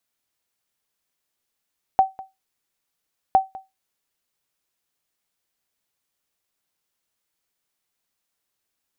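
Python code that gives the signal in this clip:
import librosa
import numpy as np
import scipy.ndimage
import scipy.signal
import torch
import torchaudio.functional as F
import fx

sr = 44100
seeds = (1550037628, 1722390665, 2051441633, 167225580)

y = fx.sonar_ping(sr, hz=767.0, decay_s=0.2, every_s=1.36, pings=2, echo_s=0.2, echo_db=-20.5, level_db=-7.0)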